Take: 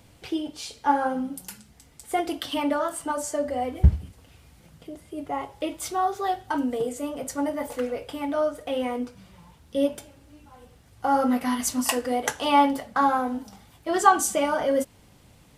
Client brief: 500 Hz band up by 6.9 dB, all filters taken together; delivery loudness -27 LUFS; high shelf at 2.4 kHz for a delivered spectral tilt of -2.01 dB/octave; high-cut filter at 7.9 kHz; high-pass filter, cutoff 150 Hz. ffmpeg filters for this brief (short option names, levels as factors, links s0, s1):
-af "highpass=150,lowpass=7900,equalizer=f=500:t=o:g=8.5,highshelf=f=2400:g=-8,volume=0.631"